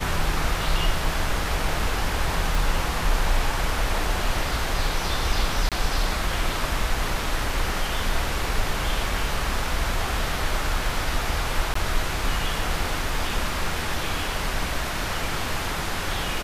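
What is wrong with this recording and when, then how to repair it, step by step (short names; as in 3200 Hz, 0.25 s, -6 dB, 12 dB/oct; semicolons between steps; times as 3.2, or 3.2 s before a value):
2.55 pop
5.69–5.72 gap 27 ms
11.74–11.75 gap 14 ms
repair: de-click; interpolate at 5.69, 27 ms; interpolate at 11.74, 14 ms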